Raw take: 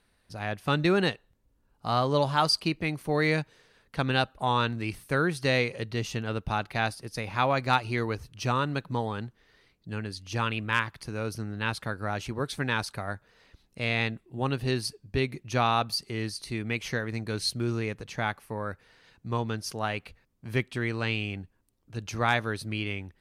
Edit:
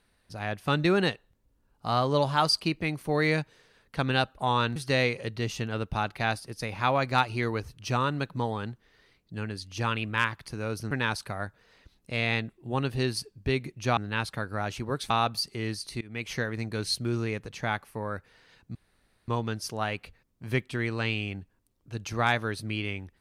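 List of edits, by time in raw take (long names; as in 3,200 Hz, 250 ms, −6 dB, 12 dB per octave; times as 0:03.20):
0:04.76–0:05.31: remove
0:11.46–0:12.59: move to 0:15.65
0:16.56–0:16.87: fade in, from −23 dB
0:19.30: splice in room tone 0.53 s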